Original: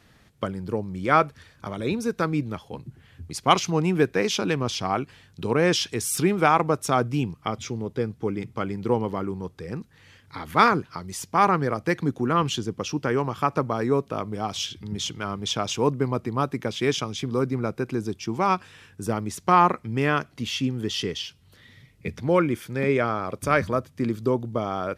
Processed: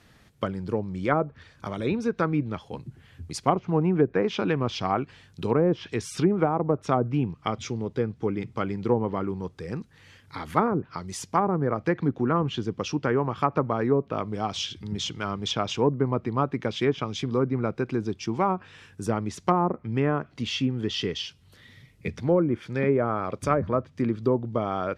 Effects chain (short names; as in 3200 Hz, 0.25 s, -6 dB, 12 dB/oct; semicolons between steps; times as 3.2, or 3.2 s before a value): treble ducked by the level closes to 590 Hz, closed at -16 dBFS